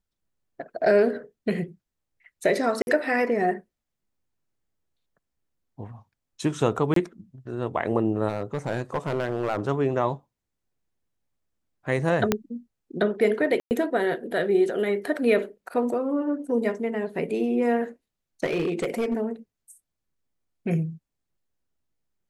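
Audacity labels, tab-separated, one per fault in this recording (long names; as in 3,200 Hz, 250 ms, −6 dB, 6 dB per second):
2.820000	2.870000	drop-out 51 ms
6.940000	6.960000	drop-out 23 ms
8.280000	9.610000	clipping −20 dBFS
12.320000	12.320000	click −6 dBFS
13.600000	13.710000	drop-out 109 ms
18.440000	19.180000	clipping −21 dBFS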